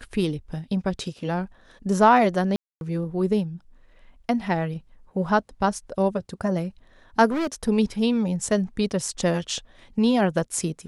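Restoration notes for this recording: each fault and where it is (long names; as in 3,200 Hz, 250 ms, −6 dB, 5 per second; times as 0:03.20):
0:02.56–0:02.81: drop-out 251 ms
0:07.27–0:07.69: clipping −22.5 dBFS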